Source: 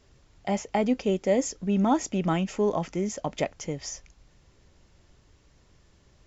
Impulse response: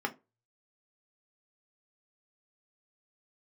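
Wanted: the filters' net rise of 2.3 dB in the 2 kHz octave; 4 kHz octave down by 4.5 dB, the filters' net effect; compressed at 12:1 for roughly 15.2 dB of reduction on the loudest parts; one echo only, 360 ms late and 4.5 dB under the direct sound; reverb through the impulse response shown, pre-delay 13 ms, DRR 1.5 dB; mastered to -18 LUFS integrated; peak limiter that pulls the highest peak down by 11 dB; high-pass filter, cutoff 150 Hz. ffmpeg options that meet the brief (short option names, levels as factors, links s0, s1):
-filter_complex "[0:a]highpass=150,equalizer=f=2000:t=o:g=5,equalizer=f=4000:t=o:g=-9,acompressor=threshold=0.02:ratio=12,alimiter=level_in=2.24:limit=0.0631:level=0:latency=1,volume=0.447,aecho=1:1:360:0.596,asplit=2[s0][s1];[1:a]atrim=start_sample=2205,adelay=13[s2];[s1][s2]afir=irnorm=-1:irlink=0,volume=0.422[s3];[s0][s3]amix=inputs=2:normalize=0,volume=11.2"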